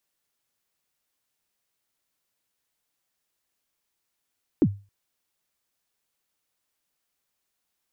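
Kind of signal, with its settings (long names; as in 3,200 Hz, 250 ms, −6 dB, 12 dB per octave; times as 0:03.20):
synth kick length 0.27 s, from 370 Hz, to 100 Hz, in 57 ms, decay 0.31 s, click off, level −11.5 dB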